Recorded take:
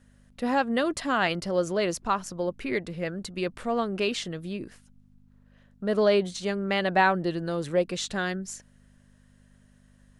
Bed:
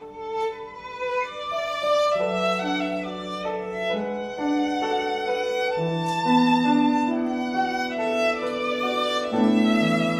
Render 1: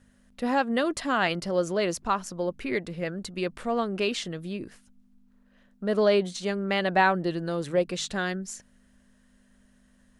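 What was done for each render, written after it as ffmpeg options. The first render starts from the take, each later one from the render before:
-af "bandreject=f=50:t=h:w=4,bandreject=f=100:t=h:w=4,bandreject=f=150:t=h:w=4"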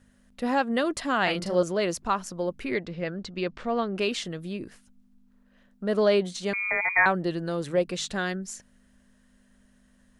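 -filter_complex "[0:a]asettb=1/sr,asplit=3[a][b][c];[a]atrim=end=1.234[d];[b]atrim=start=1.23:end=1.63,asetpts=PTS-STARTPTS,afade=t=in:d=0.004:c=qsin,afade=t=out:st=0.396:d=0.004:c=qsin,asplit=2[e][f];[f]adelay=39,volume=-5dB[g];[e][g]amix=inputs=2:normalize=0,atrim=end_sample=17640[h];[c]atrim=start=1.626[i];[d][h]acrossfade=d=0.004:c1=hsin:c2=qsin[j];[j][i]acrossfade=d=0.004:c1=qsin:c2=hsin,asettb=1/sr,asplit=3[k][l][m];[k]atrim=end=2.744[n];[l]atrim=start=2.74:end=3.96,asetpts=PTS-STARTPTS,afade=t=in:d=0.004:c=qsin,afade=t=out:st=1.216:d=0.004:c=qsin,lowpass=f=5.9k:w=0.5412,lowpass=f=5.9k:w=1.3066[o];[m]atrim=start=3.956[p];[n][o]acrossfade=d=0.004:c1=hsin:c2=qsin[q];[q][p]acrossfade=d=0.004:c1=qsin:c2=hsin,asettb=1/sr,asplit=3[r][s][t];[r]atrim=end=6.534[u];[s]atrim=start=6.53:end=7.06,asetpts=PTS-STARTPTS,afade=t=in:d=0.004:c=qsin,afade=t=out:st=0.526:d=0.004:c=qsin,lowpass=f=2.2k:t=q:w=0.5098,lowpass=f=2.2k:t=q:w=0.6013,lowpass=f=2.2k:t=q:w=0.9,lowpass=f=2.2k:t=q:w=2.563,afreqshift=-2600[v];[t]atrim=start=7.056[w];[u][v]acrossfade=d=0.004:c1=hsin:c2=qsin[x];[x][w]acrossfade=d=0.004:c1=qsin:c2=hsin"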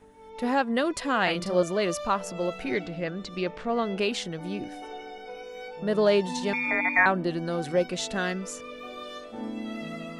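-filter_complex "[1:a]volume=-15.5dB[a];[0:a][a]amix=inputs=2:normalize=0"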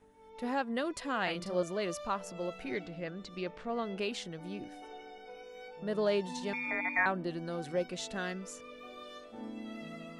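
-af "volume=-8.5dB"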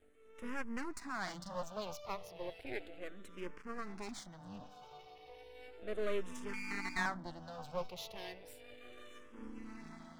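-filter_complex "[0:a]aeval=exprs='max(val(0),0)':c=same,asplit=2[a][b];[b]afreqshift=-0.34[c];[a][c]amix=inputs=2:normalize=1"

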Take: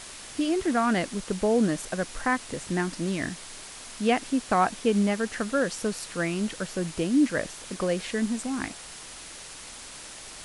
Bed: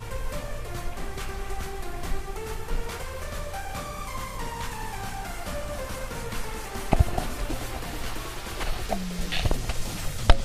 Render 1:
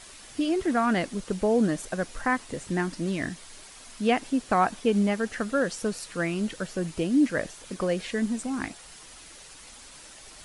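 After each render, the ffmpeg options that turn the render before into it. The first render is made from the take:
-af "afftdn=nr=7:nf=-43"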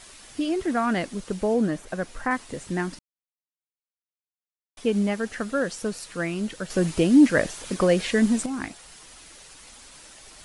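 -filter_complex "[0:a]asettb=1/sr,asplit=3[a][b][c];[a]atrim=end=1.544[d];[b]atrim=start=1.54:end=2.31,asetpts=PTS-STARTPTS,afade=t=in:d=0.004:c=qsin,afade=t=out:st=0.766:d=0.004:c=qsin,acrossover=split=2800[e][f];[f]acompressor=threshold=-47dB:ratio=4:attack=1:release=60[g];[e][g]amix=inputs=2:normalize=0[h];[c]atrim=start=2.306[i];[d][h]acrossfade=d=0.004:c1=hsin:c2=qsin[j];[j][i]acrossfade=d=0.004:c1=qsin:c2=hsin,asettb=1/sr,asplit=3[k][l][m];[k]atrim=end=6.704[n];[l]atrim=start=6.7:end=8.46,asetpts=PTS-STARTPTS,afade=t=in:d=0.004:c=qsin,afade=t=out:st=1.756:d=0.004:c=qsin,acontrast=87[o];[m]atrim=start=8.456[p];[n][o]acrossfade=d=0.004:c1=hsin:c2=qsin[q];[q][p]acrossfade=d=0.004:c1=qsin:c2=hsin,asplit=3[r][s][t];[r]atrim=end=2.99,asetpts=PTS-STARTPTS,afade=t=out:st=2.986:d=0.004:c=hsin[u];[s]atrim=start=2.99:end=4.77,asetpts=PTS-STARTPTS,volume=0[v];[t]atrim=start=4.77,asetpts=PTS-STARTPTS,afade=t=in:d=0.004:c=hsin[w];[u][v][w]concat=n=3:v=0:a=1"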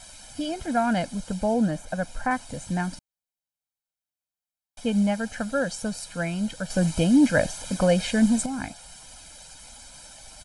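-af "equalizer=f=2k:t=o:w=1.6:g=-4.5,aecho=1:1:1.3:0.83"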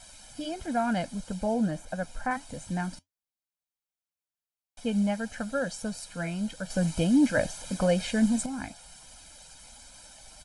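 -af "flanger=delay=3:depth=2.9:regen=-77:speed=1.5:shape=triangular"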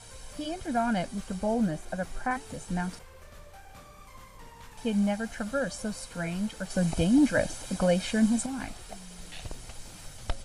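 -filter_complex "[1:a]volume=-15.5dB[a];[0:a][a]amix=inputs=2:normalize=0"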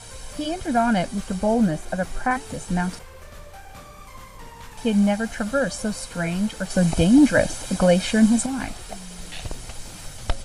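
-af "volume=7.5dB"

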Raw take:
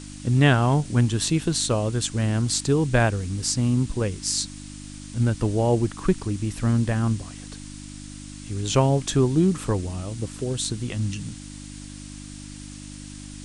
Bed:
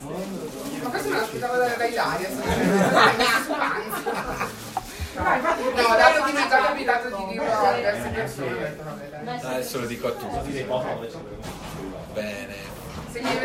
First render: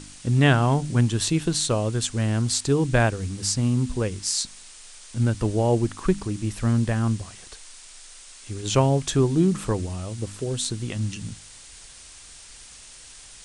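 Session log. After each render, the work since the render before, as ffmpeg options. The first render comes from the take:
-af "bandreject=f=50:t=h:w=4,bandreject=f=100:t=h:w=4,bandreject=f=150:t=h:w=4,bandreject=f=200:t=h:w=4,bandreject=f=250:t=h:w=4,bandreject=f=300:t=h:w=4"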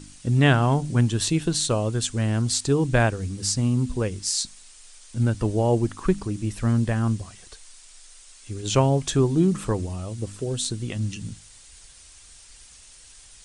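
-af "afftdn=nr=6:nf=-46"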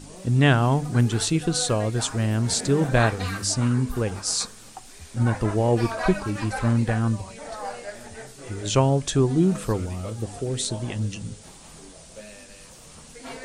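-filter_complex "[1:a]volume=-13.5dB[a];[0:a][a]amix=inputs=2:normalize=0"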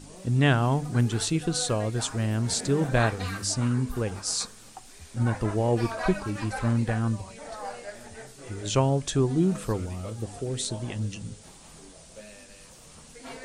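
-af "volume=-3.5dB"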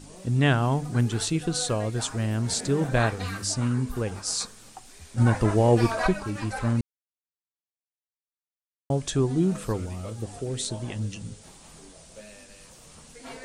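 -filter_complex "[0:a]asplit=5[a][b][c][d][e];[a]atrim=end=5.182[f];[b]atrim=start=5.178:end=6.072,asetpts=PTS-STARTPTS,volume=5dB[g];[c]atrim=start=6.068:end=6.81,asetpts=PTS-STARTPTS,afade=t=out:st=0.738:d=0.004:c=hsin[h];[d]atrim=start=6.81:end=8.9,asetpts=PTS-STARTPTS,volume=0[i];[e]atrim=start=8.9,asetpts=PTS-STARTPTS,afade=t=in:d=0.004:c=hsin[j];[f][g]acrossfade=d=0.004:c1=hsin:c2=hsin[k];[h][i][j]concat=n=3:v=0:a=1[l];[k][l]acrossfade=d=0.004:c1=hsin:c2=hsin"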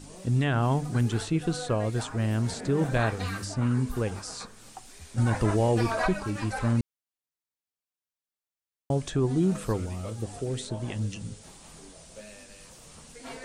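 -filter_complex "[0:a]acrossover=split=2600[a][b];[a]alimiter=limit=-16.5dB:level=0:latency=1:release=15[c];[b]acompressor=threshold=-40dB:ratio=6[d];[c][d]amix=inputs=2:normalize=0"

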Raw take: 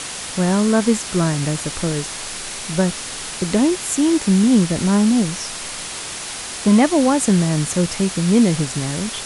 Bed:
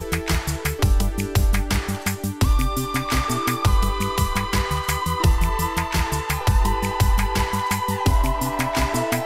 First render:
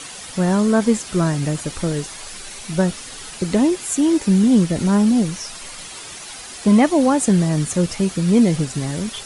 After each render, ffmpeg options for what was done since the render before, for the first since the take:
-af "afftdn=nr=9:nf=-30"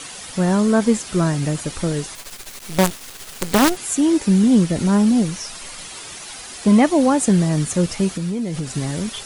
-filter_complex "[0:a]asettb=1/sr,asplit=3[a][b][c];[a]atrim=end=2.154[d];[b]atrim=start=2.15:end=3.77,asetpts=PTS-STARTPTS,afade=t=in:d=0.004:c=qsin,afade=t=out:st=1.616:d=0.004:c=qsin,acrusher=bits=3:dc=4:mix=0:aa=0.000001[e];[c]atrim=start=3.766[f];[d][e]acrossfade=d=0.004:c1=hsin:c2=qsin[g];[g][f]acrossfade=d=0.004:c1=qsin:c2=hsin,asettb=1/sr,asplit=3[h][i][j];[h]atrim=end=8.124[k];[i]atrim=start=8.12:end=8.71,asetpts=PTS-STARTPTS,afade=t=in:d=0.004:c=qsin,afade=t=out:st=0.586:d=0.004:c=qsin,acompressor=threshold=-20dB:ratio=10:attack=3.2:release=140:knee=1:detection=peak[l];[j]atrim=start=8.706[m];[k][l]acrossfade=d=0.004:c1=hsin:c2=qsin[n];[n][m]acrossfade=d=0.004:c1=qsin:c2=hsin"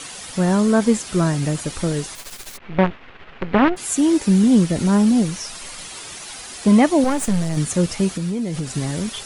-filter_complex "[0:a]asplit=3[a][b][c];[a]afade=t=out:st=2.56:d=0.02[d];[b]lowpass=f=2.6k:w=0.5412,lowpass=f=2.6k:w=1.3066,afade=t=in:st=2.56:d=0.02,afade=t=out:st=3.76:d=0.02[e];[c]afade=t=in:st=3.76:d=0.02[f];[d][e][f]amix=inputs=3:normalize=0,asettb=1/sr,asplit=3[g][h][i];[g]atrim=end=7.044[j];[h]atrim=start=7.04:end=7.57,asetpts=PTS-STARTPTS,afade=t=in:d=0.004:c=qsin,afade=t=out:st=0.526:d=0.004:c=qsin,aeval=exprs='if(lt(val(0),0),0.251*val(0),val(0))':c=same[k];[i]atrim=start=7.566[l];[j][k]acrossfade=d=0.004:c1=hsin:c2=qsin[m];[m][l]acrossfade=d=0.004:c1=qsin:c2=hsin"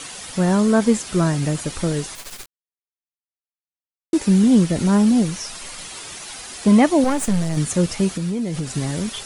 -filter_complex "[0:a]asplit=3[a][b][c];[a]atrim=end=2.46,asetpts=PTS-STARTPTS,afade=t=out:st=2.456:d=0.004:c=hsin[d];[b]atrim=start=2.46:end=4.13,asetpts=PTS-STARTPTS,volume=0[e];[c]atrim=start=4.13,asetpts=PTS-STARTPTS,afade=t=in:d=0.004:c=hsin[f];[d][e][f]concat=n=3:v=0:a=1"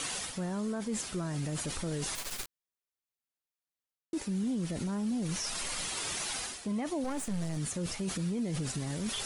-af "areverse,acompressor=threshold=-25dB:ratio=16,areverse,alimiter=level_in=2.5dB:limit=-24dB:level=0:latency=1:release=26,volume=-2.5dB"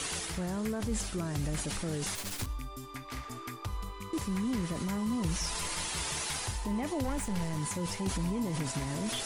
-filter_complex "[1:a]volume=-19.5dB[a];[0:a][a]amix=inputs=2:normalize=0"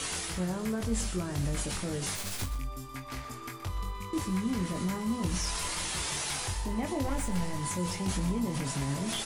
-filter_complex "[0:a]asplit=2[a][b];[b]adelay=22,volume=-5dB[c];[a][c]amix=inputs=2:normalize=0,aecho=1:1:124:0.224"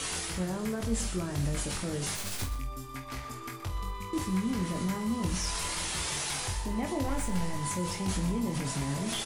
-filter_complex "[0:a]asplit=2[a][b];[b]adelay=48,volume=-11.5dB[c];[a][c]amix=inputs=2:normalize=0"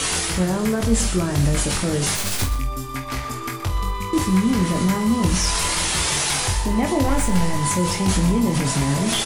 -af "volume=12dB"

